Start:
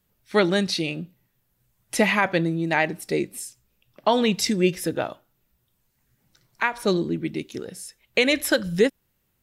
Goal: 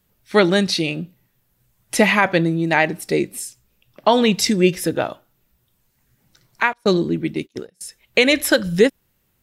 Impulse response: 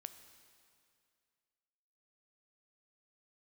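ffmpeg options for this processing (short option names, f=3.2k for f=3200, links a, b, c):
-filter_complex "[0:a]asettb=1/sr,asplit=3[a][b][c];[a]atrim=end=6.734[d];[b]atrim=start=6.73:end=7.81,asetpts=PTS-STARTPTS,afade=t=in:d=0.004:c=qsin,afade=t=out:st=1.076:d=0.004:c=qsin,agate=range=-28dB:threshold=-31dB:ratio=16:detection=peak[e];[c]atrim=start=7.806[f];[d][e]acrossfade=d=0.004:c1=hsin:c2=qsin[g];[g][f]acrossfade=d=0.004:c1=qsin:c2=hsin,volume=5dB"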